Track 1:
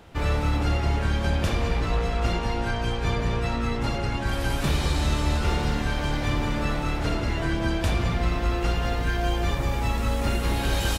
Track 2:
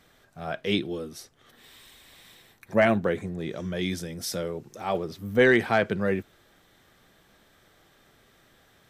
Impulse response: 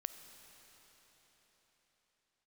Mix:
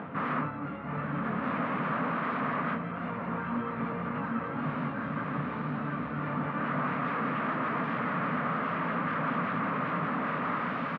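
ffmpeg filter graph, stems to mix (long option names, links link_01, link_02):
-filter_complex "[0:a]acompressor=mode=upward:threshold=-34dB:ratio=2.5,acontrast=72,volume=-1dB,asplit=2[link_01][link_02];[link_02]volume=-9.5dB[link_03];[1:a]highpass=340,acompressor=threshold=-31dB:ratio=6,volume=-11.5dB,asplit=2[link_04][link_05];[link_05]apad=whole_len=484260[link_06];[link_01][link_06]sidechaincompress=threshold=-55dB:ratio=10:attack=47:release=883[link_07];[link_03]aecho=0:1:722:1[link_08];[link_07][link_04][link_08]amix=inputs=3:normalize=0,flanger=delay=19:depth=4.8:speed=1.9,aeval=exprs='0.0473*(abs(mod(val(0)/0.0473+3,4)-2)-1)':channel_layout=same,highpass=frequency=140:width=0.5412,highpass=frequency=140:width=1.3066,equalizer=frequency=160:width_type=q:width=4:gain=6,equalizer=frequency=250:width_type=q:width=4:gain=9,equalizer=frequency=360:width_type=q:width=4:gain=-10,equalizer=frequency=800:width_type=q:width=4:gain=-5,equalizer=frequency=1200:width_type=q:width=4:gain=9,lowpass=frequency=2000:width=0.5412,lowpass=frequency=2000:width=1.3066"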